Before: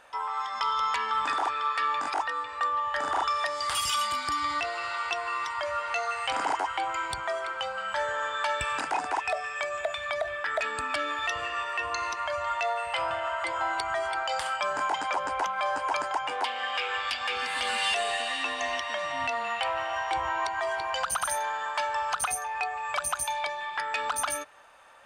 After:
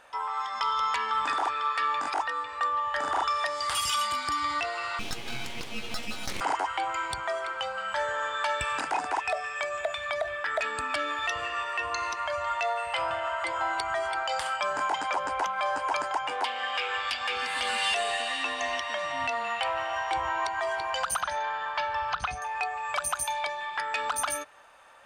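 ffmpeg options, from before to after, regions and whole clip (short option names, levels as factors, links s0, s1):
-filter_complex "[0:a]asettb=1/sr,asplit=3[s0][s1][s2];[s0]atrim=end=4.994[s3];[s1]atrim=start=4.99:end=6.41,asetpts=PTS-STARTPTS,afade=t=in:d=0.004:c=qsin,afade=t=out:st=1.416:d=0.004:c=qsin,highpass=f=1000:w=0.5412,highpass=f=1000:w=1.3066,aeval=exprs='abs(val(0))':c=same[s4];[s2]atrim=start=6.406[s5];[s3][s4]acrossfade=d=0.004:c1=hsin:c2=qsin[s6];[s6][s5]acrossfade=d=0.004:c1=qsin:c2=hsin,asettb=1/sr,asplit=3[s7][s8][s9];[s7]atrim=end=21.214[s10];[s8]atrim=start=21.21:end=22.42,asetpts=PTS-STARTPTS,afade=t=in:d=0.004:c=qsin,afade=t=out:st=1.206:d=0.004:c=qsin,lowpass=f=4900:w=0.5412,lowpass=f=4900:w=1.3066,asubboost=boost=9.5:cutoff=180[s11];[s9]atrim=start=22.416[s12];[s10][s11]acrossfade=d=0.004:c1=hsin:c2=qsin[s13];[s13][s12]acrossfade=d=0.004:c1=qsin:c2=hsin"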